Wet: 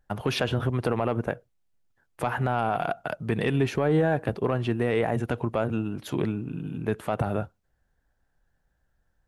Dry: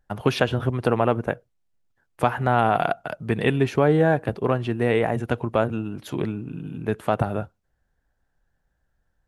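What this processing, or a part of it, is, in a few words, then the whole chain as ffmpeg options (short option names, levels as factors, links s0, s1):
soft clipper into limiter: -af "asoftclip=type=tanh:threshold=0.531,alimiter=limit=0.188:level=0:latency=1:release=56"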